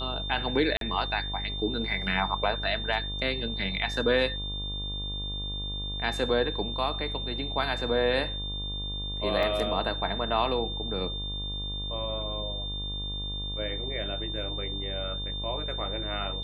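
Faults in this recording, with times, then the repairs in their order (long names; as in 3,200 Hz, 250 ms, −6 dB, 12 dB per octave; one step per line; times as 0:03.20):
mains buzz 50 Hz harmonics 24 −36 dBFS
whistle 3,600 Hz −34 dBFS
0:00.77–0:00.81: drop-out 42 ms
0:09.43: drop-out 2.2 ms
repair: hum removal 50 Hz, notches 24
notch filter 3,600 Hz, Q 30
repair the gap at 0:00.77, 42 ms
repair the gap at 0:09.43, 2.2 ms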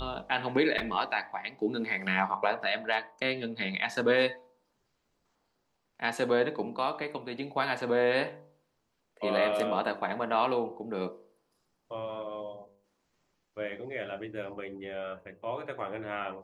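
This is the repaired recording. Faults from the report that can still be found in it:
none of them is left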